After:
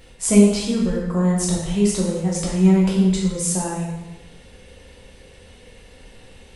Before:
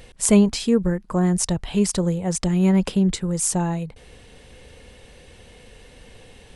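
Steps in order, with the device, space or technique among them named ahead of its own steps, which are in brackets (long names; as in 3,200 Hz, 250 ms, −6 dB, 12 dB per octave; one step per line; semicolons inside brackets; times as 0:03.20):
bathroom (convolution reverb RT60 1.0 s, pre-delay 6 ms, DRR −4 dB)
level −5 dB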